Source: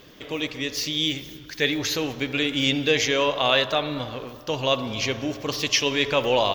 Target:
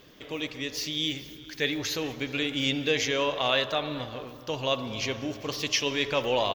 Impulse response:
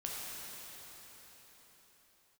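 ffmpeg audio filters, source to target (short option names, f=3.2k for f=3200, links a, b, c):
-filter_complex "[0:a]asplit=2[a][b];[b]adelay=419.8,volume=-17dB,highshelf=f=4k:g=-9.45[c];[a][c]amix=inputs=2:normalize=0,asplit=2[d][e];[1:a]atrim=start_sample=2205,atrim=end_sample=6615,adelay=148[f];[e][f]afir=irnorm=-1:irlink=0,volume=-22.5dB[g];[d][g]amix=inputs=2:normalize=0,volume=-5dB"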